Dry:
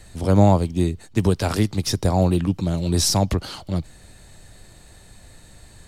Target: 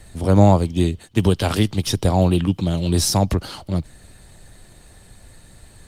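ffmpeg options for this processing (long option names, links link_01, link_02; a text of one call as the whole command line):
ffmpeg -i in.wav -filter_complex "[0:a]asplit=3[link_01][link_02][link_03];[link_01]afade=type=out:start_time=0.7:duration=0.02[link_04];[link_02]equalizer=frequency=3100:width=3.4:gain=10,afade=type=in:start_time=0.7:duration=0.02,afade=type=out:start_time=2.98:duration=0.02[link_05];[link_03]afade=type=in:start_time=2.98:duration=0.02[link_06];[link_04][link_05][link_06]amix=inputs=3:normalize=0,volume=2dB" -ar 48000 -c:a libopus -b:a 32k out.opus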